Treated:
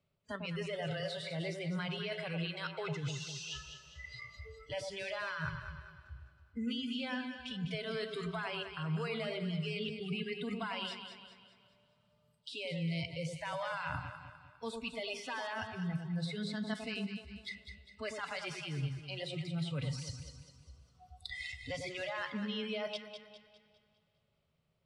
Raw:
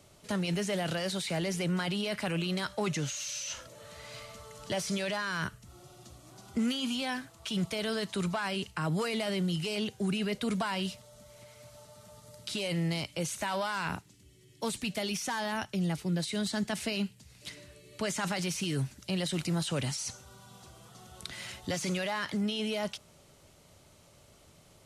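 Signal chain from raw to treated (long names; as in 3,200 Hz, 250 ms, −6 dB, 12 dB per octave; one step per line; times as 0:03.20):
noise reduction from a noise print of the clip's start 29 dB
thirty-one-band graphic EQ 160 Hz +7 dB, 315 Hz −9 dB, 800 Hz −6 dB, 2,500 Hz +4 dB, 6,300 Hz −8 dB, 10,000 Hz +5 dB
reversed playback
downward compressor 6 to 1, threshold −45 dBFS, peak gain reduction 18.5 dB
reversed playback
high-frequency loss of the air 130 metres
delay that swaps between a low-pass and a high-pass 101 ms, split 1,100 Hz, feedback 66%, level −4.5 dB
convolution reverb RT60 2.6 s, pre-delay 33 ms, DRR 17.5 dB
level +8 dB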